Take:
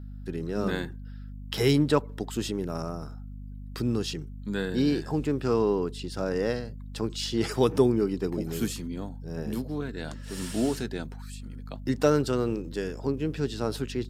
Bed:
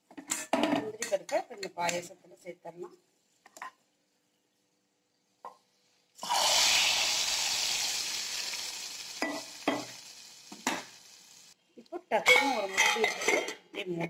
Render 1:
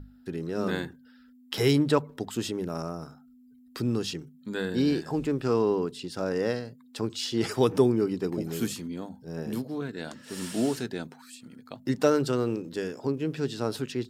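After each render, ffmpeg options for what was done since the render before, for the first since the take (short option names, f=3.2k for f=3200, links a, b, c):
-af "bandreject=f=50:t=h:w=6,bandreject=f=100:t=h:w=6,bandreject=f=150:t=h:w=6,bandreject=f=200:t=h:w=6"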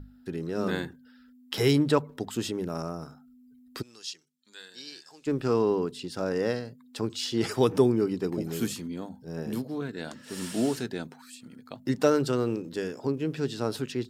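-filter_complex "[0:a]asplit=3[a][b][c];[a]afade=t=out:st=3.81:d=0.02[d];[b]bandpass=f=5.7k:t=q:w=1.2,afade=t=in:st=3.81:d=0.02,afade=t=out:st=5.26:d=0.02[e];[c]afade=t=in:st=5.26:d=0.02[f];[d][e][f]amix=inputs=3:normalize=0"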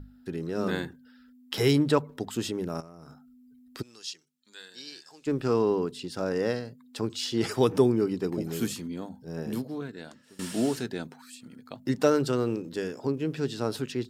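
-filter_complex "[0:a]asettb=1/sr,asplit=3[a][b][c];[a]atrim=end=2.804[d];[b]atrim=start=2.8:end=3.79,asetpts=PTS-STARTPTS,afade=t=in:d=0.004:c=qsin,afade=t=out:st=0.986:d=0.004:c=qsin,acompressor=threshold=-41dB:ratio=12:attack=3.2:release=140:knee=1:detection=peak[e];[c]atrim=start=3.786[f];[d][e]acrossfade=d=0.004:c1=hsin:c2=qsin[g];[g][f]acrossfade=d=0.004:c1=qsin:c2=hsin,asplit=2[h][i];[h]atrim=end=10.39,asetpts=PTS-STARTPTS,afade=t=out:st=9.6:d=0.79:silence=0.0794328[j];[i]atrim=start=10.39,asetpts=PTS-STARTPTS,afade=t=in:d=0.004:c=hsin:silence=0.0794328[k];[j][k]concat=n=2:v=0:a=1"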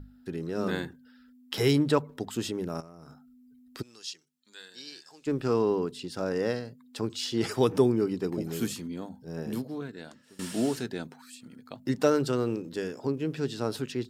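-af "volume=-1dB"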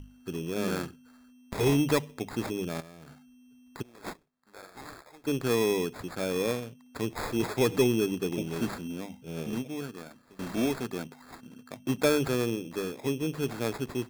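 -af "acrusher=samples=15:mix=1:aa=0.000001,asoftclip=type=tanh:threshold=-13.5dB"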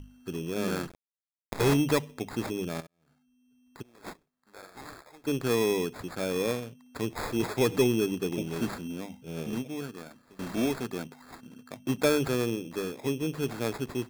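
-filter_complex "[0:a]asettb=1/sr,asplit=3[a][b][c];[a]atrim=end=0.874[d];[b]atrim=start=0.87:end=1.74,asetpts=PTS-STARTPTS,afade=t=in:d=0.004:c=qsin,afade=t=out:st=0.866:d=0.004:c=qsin,acrusher=bits=5:dc=4:mix=0:aa=0.000001[e];[c]atrim=start=1.736[f];[d][e]acrossfade=d=0.004:c1=hsin:c2=qsin[g];[g][f]acrossfade=d=0.004:c1=qsin:c2=hsin,asplit=2[h][i];[h]atrim=end=2.87,asetpts=PTS-STARTPTS,afade=t=out:st=2.866:d=0.004:c=hsin[j];[i]atrim=start=2.87,asetpts=PTS-STARTPTS,afade=t=in:d=1.73[k];[j][k]concat=n=2:v=0:a=1"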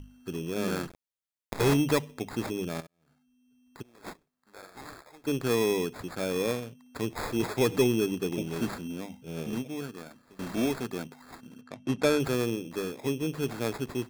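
-filter_complex "[0:a]asettb=1/sr,asplit=3[a][b][c];[a]atrim=end=11.614[d];[b]atrim=start=11.61:end=12.2,asetpts=PTS-STARTPTS,afade=t=in:d=0.004:c=qsin,afade=t=out:st=0.586:d=0.004:c=qsin,adynamicsmooth=sensitivity=6.5:basefreq=5k[e];[c]atrim=start=12.196[f];[d][e]acrossfade=d=0.004:c1=hsin:c2=qsin[g];[g][f]acrossfade=d=0.004:c1=qsin:c2=hsin"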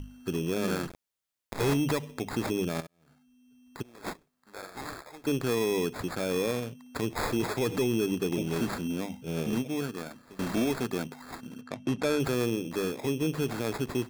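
-filter_complex "[0:a]asplit=2[a][b];[b]acompressor=threshold=-34dB:ratio=6,volume=-1dB[c];[a][c]amix=inputs=2:normalize=0,alimiter=limit=-20dB:level=0:latency=1:release=67"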